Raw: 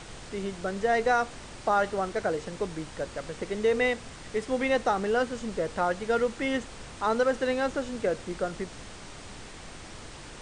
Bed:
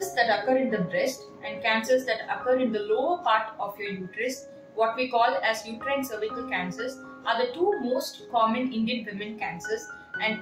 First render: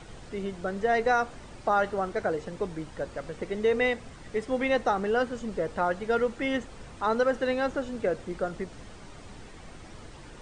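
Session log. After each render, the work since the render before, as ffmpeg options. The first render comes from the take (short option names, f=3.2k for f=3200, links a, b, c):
-af "afftdn=nr=8:nf=-45"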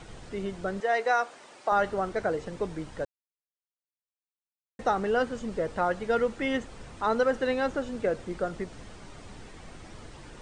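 -filter_complex "[0:a]asettb=1/sr,asplit=3[a][b][c];[a]atrim=end=0.804[d];[b]atrim=start=0.8:end=1.72,asetpts=PTS-STARTPTS,afade=t=in:d=0.004:c=qsin,afade=t=out:st=0.916:d=0.004:c=qsin,highpass=470[e];[c]atrim=start=1.716[f];[d][e]acrossfade=d=0.004:c1=hsin:c2=qsin[g];[g][f]acrossfade=d=0.004:c1=qsin:c2=hsin,asplit=3[h][i][j];[h]atrim=end=3.05,asetpts=PTS-STARTPTS,afade=t=out:st=3.046:d=0.004:c=hsin[k];[i]atrim=start=3.05:end=4.79,asetpts=PTS-STARTPTS,volume=0[l];[j]atrim=start=4.79,asetpts=PTS-STARTPTS,afade=t=in:d=0.004:c=hsin[m];[k][l][m]concat=n=3:v=0:a=1"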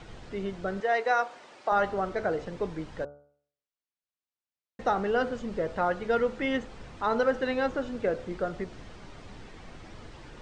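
-af "lowpass=5.5k,bandreject=f=72.38:t=h:w=4,bandreject=f=144.76:t=h:w=4,bandreject=f=217.14:t=h:w=4,bandreject=f=289.52:t=h:w=4,bandreject=f=361.9:t=h:w=4,bandreject=f=434.28:t=h:w=4,bandreject=f=506.66:t=h:w=4,bandreject=f=579.04:t=h:w=4,bandreject=f=651.42:t=h:w=4,bandreject=f=723.8:t=h:w=4,bandreject=f=796.18:t=h:w=4,bandreject=f=868.56:t=h:w=4,bandreject=f=940.94:t=h:w=4,bandreject=f=1.01332k:t=h:w=4,bandreject=f=1.0857k:t=h:w=4,bandreject=f=1.15808k:t=h:w=4,bandreject=f=1.23046k:t=h:w=4,bandreject=f=1.30284k:t=h:w=4,bandreject=f=1.37522k:t=h:w=4,bandreject=f=1.4476k:t=h:w=4,bandreject=f=1.51998k:t=h:w=4"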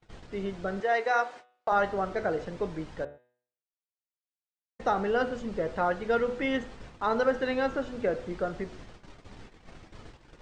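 -af "agate=range=-34dB:threshold=-44dB:ratio=16:detection=peak,bandreject=f=123.1:t=h:w=4,bandreject=f=246.2:t=h:w=4,bandreject=f=369.3:t=h:w=4,bandreject=f=492.4:t=h:w=4,bandreject=f=615.5:t=h:w=4,bandreject=f=738.6:t=h:w=4,bandreject=f=861.7:t=h:w=4,bandreject=f=984.8:t=h:w=4,bandreject=f=1.1079k:t=h:w=4,bandreject=f=1.231k:t=h:w=4,bandreject=f=1.3541k:t=h:w=4,bandreject=f=1.4772k:t=h:w=4,bandreject=f=1.6003k:t=h:w=4,bandreject=f=1.7234k:t=h:w=4,bandreject=f=1.8465k:t=h:w=4,bandreject=f=1.9696k:t=h:w=4,bandreject=f=2.0927k:t=h:w=4,bandreject=f=2.2158k:t=h:w=4,bandreject=f=2.3389k:t=h:w=4,bandreject=f=2.462k:t=h:w=4,bandreject=f=2.5851k:t=h:w=4,bandreject=f=2.7082k:t=h:w=4,bandreject=f=2.8313k:t=h:w=4,bandreject=f=2.9544k:t=h:w=4,bandreject=f=3.0775k:t=h:w=4,bandreject=f=3.2006k:t=h:w=4,bandreject=f=3.3237k:t=h:w=4,bandreject=f=3.4468k:t=h:w=4,bandreject=f=3.5699k:t=h:w=4,bandreject=f=3.693k:t=h:w=4,bandreject=f=3.8161k:t=h:w=4,bandreject=f=3.9392k:t=h:w=4"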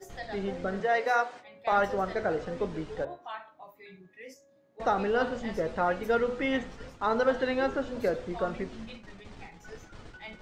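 -filter_complex "[1:a]volume=-17.5dB[a];[0:a][a]amix=inputs=2:normalize=0"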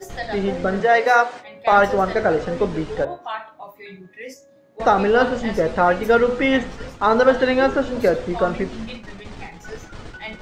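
-af "volume=11dB"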